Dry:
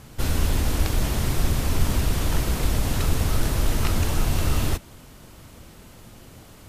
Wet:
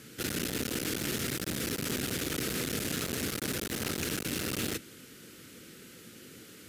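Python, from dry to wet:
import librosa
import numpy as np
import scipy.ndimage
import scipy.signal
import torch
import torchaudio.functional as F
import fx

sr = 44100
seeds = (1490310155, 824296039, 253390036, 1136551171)

y = fx.octave_divider(x, sr, octaves=2, level_db=-6.0)
y = fx.band_shelf(y, sr, hz=820.0, db=-16.0, octaves=1.1)
y = np.clip(y, -10.0 ** (-21.5 / 20.0), 10.0 ** (-21.5 / 20.0))
y = scipy.signal.sosfilt(scipy.signal.butter(2, 220.0, 'highpass', fs=sr, output='sos'), y)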